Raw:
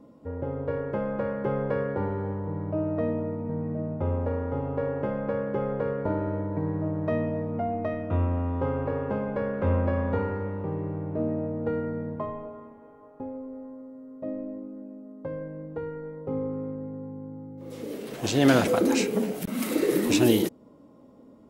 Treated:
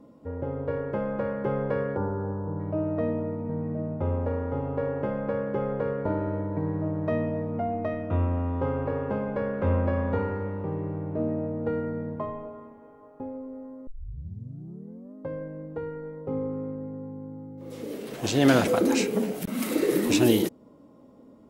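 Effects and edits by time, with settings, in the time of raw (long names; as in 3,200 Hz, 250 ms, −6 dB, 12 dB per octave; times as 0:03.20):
0:01.97–0:02.60: gain on a spectral selection 1,700–4,500 Hz −17 dB
0:13.87: tape start 1.28 s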